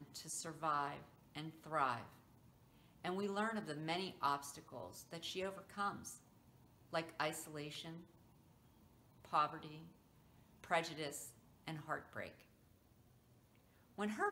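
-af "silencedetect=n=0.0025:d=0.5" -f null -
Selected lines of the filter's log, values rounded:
silence_start: 2.13
silence_end: 3.04 | silence_duration: 0.91
silence_start: 6.17
silence_end: 6.93 | silence_duration: 0.76
silence_start: 8.01
silence_end: 9.25 | silence_duration: 1.24
silence_start: 9.88
silence_end: 10.64 | silence_duration: 0.75
silence_start: 12.41
silence_end: 13.98 | silence_duration: 1.57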